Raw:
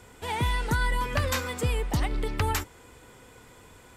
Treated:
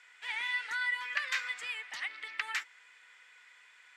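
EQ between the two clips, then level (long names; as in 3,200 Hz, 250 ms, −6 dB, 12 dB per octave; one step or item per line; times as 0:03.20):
high-pass with resonance 1,900 Hz, resonance Q 2.6
high-frequency loss of the air 88 metres
−4.5 dB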